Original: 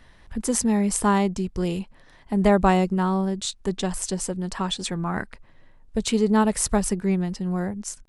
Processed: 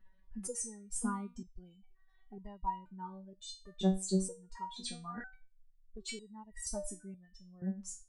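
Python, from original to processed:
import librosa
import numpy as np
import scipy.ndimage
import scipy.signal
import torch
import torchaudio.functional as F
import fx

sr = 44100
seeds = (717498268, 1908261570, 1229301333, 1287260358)

y = fx.spec_expand(x, sr, power=1.7)
y = fx.dereverb_blind(y, sr, rt60_s=0.64)
y = fx.resonator_held(y, sr, hz=2.1, low_hz=190.0, high_hz=950.0)
y = y * librosa.db_to_amplitude(3.0)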